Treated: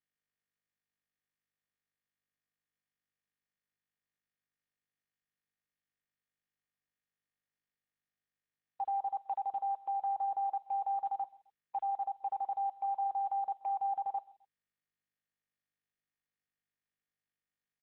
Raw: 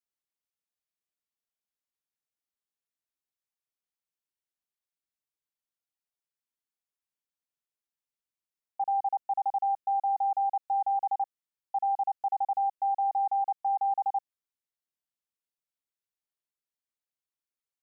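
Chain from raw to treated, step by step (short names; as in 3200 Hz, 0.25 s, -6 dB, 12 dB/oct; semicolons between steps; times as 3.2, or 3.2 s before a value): gate -35 dBFS, range -27 dB; limiter -31.5 dBFS, peak gain reduction 8.5 dB; on a send: feedback echo 0.13 s, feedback 34%, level -23 dB; on the sum: gain +2 dB; Opus 6 kbps 48000 Hz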